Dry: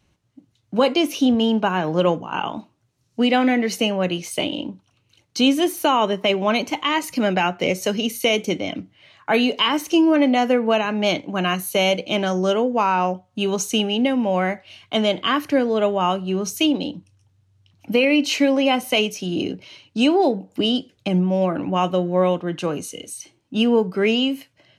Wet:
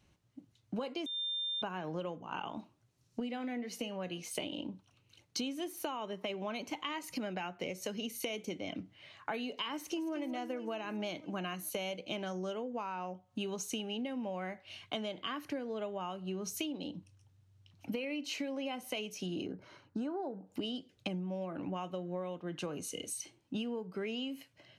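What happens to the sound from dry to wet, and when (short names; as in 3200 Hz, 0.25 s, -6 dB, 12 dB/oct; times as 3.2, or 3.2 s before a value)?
1.06–1.62 bleep 3600 Hz -19.5 dBFS
3.2–4.35 resonator 240 Hz, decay 0.21 s
9.74–10.15 echo throw 0.22 s, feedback 60%, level -9 dB
19.46–20.47 resonant high shelf 2000 Hz -10 dB, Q 3
whole clip: compressor 16:1, threshold -30 dBFS; gain -5 dB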